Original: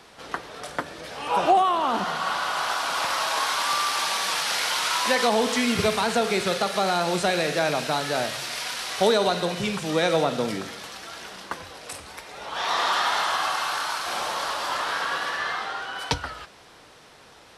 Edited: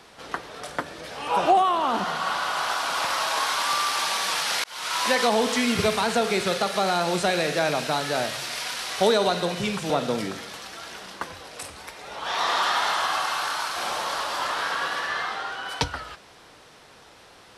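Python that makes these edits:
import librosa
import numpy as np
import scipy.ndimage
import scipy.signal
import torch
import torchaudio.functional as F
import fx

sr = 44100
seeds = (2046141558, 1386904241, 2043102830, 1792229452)

y = fx.edit(x, sr, fx.fade_in_span(start_s=4.64, length_s=0.39),
    fx.cut(start_s=9.9, length_s=0.3), tone=tone)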